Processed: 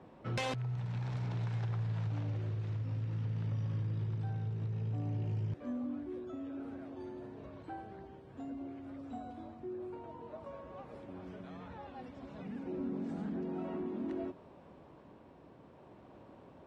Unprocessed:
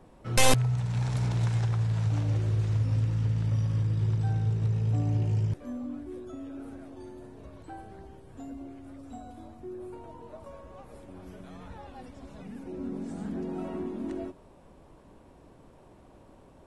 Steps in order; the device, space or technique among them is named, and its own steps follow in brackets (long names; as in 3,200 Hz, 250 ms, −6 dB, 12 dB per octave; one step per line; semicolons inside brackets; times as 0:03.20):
AM radio (band-pass filter 100–3,700 Hz; downward compressor 5 to 1, threshold −32 dBFS, peak gain reduction 11 dB; soft clipping −26 dBFS, distortion −25 dB; amplitude tremolo 0.55 Hz, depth 19%)